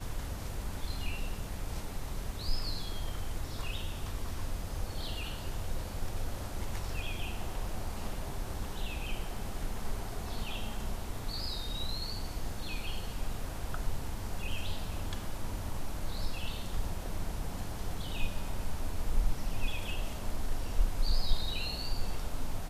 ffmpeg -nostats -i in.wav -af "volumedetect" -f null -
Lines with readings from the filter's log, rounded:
mean_volume: -31.9 dB
max_volume: -13.5 dB